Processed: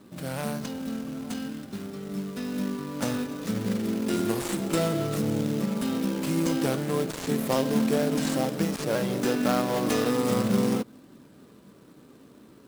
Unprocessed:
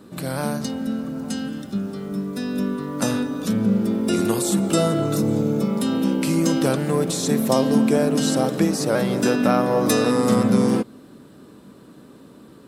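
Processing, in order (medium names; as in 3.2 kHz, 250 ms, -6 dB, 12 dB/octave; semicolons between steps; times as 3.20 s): dead-time distortion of 0.16 ms; short-mantissa float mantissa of 2-bit; flange 0.36 Hz, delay 1 ms, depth 2.1 ms, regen -82%; trim -1.5 dB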